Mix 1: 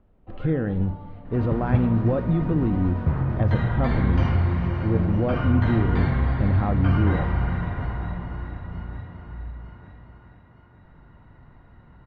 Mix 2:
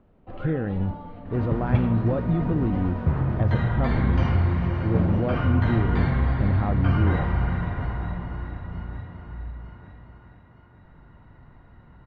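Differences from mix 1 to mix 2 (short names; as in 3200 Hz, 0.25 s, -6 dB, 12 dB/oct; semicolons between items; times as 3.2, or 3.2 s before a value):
speech: send -8.0 dB; first sound +4.5 dB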